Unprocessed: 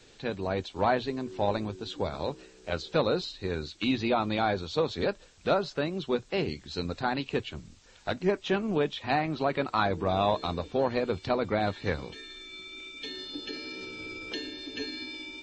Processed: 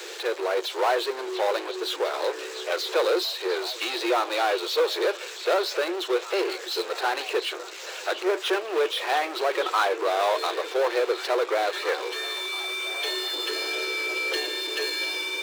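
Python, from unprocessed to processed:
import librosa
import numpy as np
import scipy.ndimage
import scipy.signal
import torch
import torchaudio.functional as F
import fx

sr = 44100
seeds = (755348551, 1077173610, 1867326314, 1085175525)

y = fx.power_curve(x, sr, exponent=0.5)
y = scipy.signal.sosfilt(scipy.signal.cheby1(6, 3, 340.0, 'highpass', fs=sr, output='sos'), y)
y = fx.echo_stepped(y, sr, ms=697, hz=3500.0, octaves=-0.7, feedback_pct=70, wet_db=-8.5)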